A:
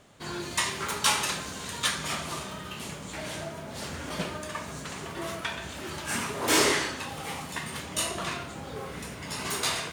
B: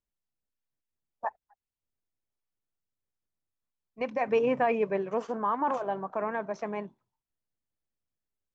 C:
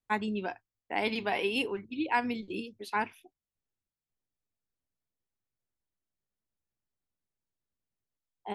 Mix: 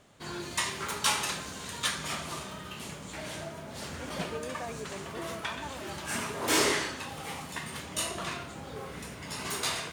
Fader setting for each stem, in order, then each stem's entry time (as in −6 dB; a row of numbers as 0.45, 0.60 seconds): −3.0 dB, −14.5 dB, muted; 0.00 s, 0.00 s, muted